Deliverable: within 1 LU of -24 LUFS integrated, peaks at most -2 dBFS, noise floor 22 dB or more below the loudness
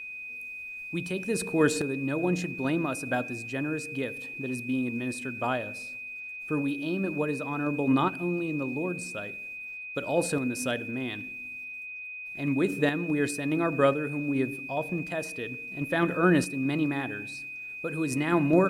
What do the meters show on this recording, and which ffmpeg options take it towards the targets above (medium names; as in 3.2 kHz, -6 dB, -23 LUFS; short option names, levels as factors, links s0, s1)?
steady tone 2.5 kHz; tone level -37 dBFS; loudness -29.5 LUFS; peak level -9.5 dBFS; loudness target -24.0 LUFS
-> -af "bandreject=f=2500:w=30"
-af "volume=1.88"